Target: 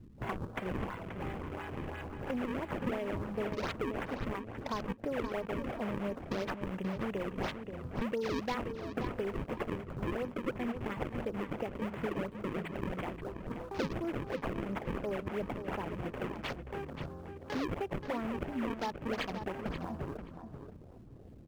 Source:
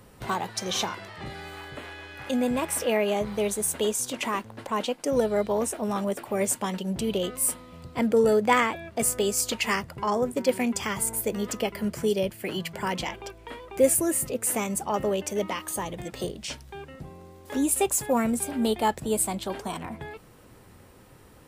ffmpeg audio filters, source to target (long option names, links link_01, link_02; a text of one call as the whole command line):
ffmpeg -i in.wav -filter_complex "[0:a]acrusher=samples=36:mix=1:aa=0.000001:lfo=1:lforange=57.6:lforate=2.9,acompressor=threshold=-34dB:ratio=5,afwtdn=0.00447,asplit=2[link_01][link_02];[link_02]adelay=530,lowpass=frequency=4800:poles=1,volume=-8.5dB,asplit=2[link_03][link_04];[link_04]adelay=530,lowpass=frequency=4800:poles=1,volume=0.16[link_05];[link_03][link_05]amix=inputs=2:normalize=0[link_06];[link_01][link_06]amix=inputs=2:normalize=0" out.wav